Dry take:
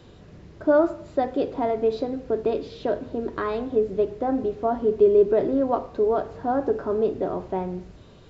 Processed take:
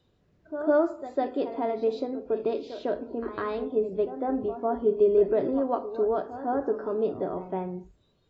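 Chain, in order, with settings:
backwards echo 153 ms −11.5 dB
noise reduction from a noise print of the clip's start 16 dB
level −4 dB

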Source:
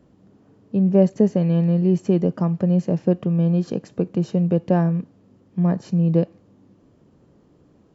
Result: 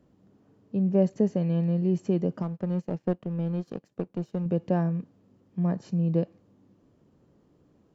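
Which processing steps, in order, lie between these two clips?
0:02.42–0:04.46: power curve on the samples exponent 1.4
level −7 dB

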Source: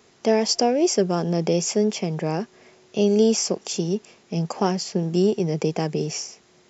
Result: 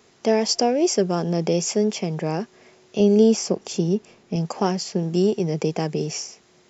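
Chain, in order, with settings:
0:03.00–0:04.36: spectral tilt −1.5 dB per octave

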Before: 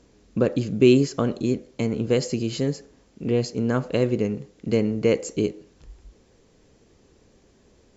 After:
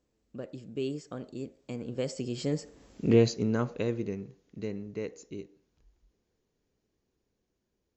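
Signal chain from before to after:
source passing by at 0:03.02, 20 m/s, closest 4.2 metres
level +3 dB

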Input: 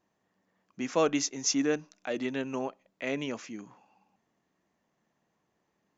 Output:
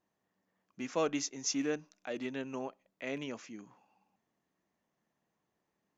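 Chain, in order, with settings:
loose part that buzzes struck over −36 dBFS, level −35 dBFS
level −6 dB

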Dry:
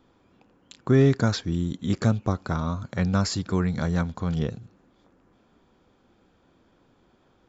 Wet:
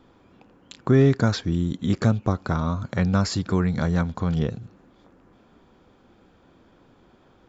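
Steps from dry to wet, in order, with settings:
high-shelf EQ 5,600 Hz −6 dB
in parallel at 0 dB: downward compressor, threshold −31 dBFS, peak gain reduction 16 dB

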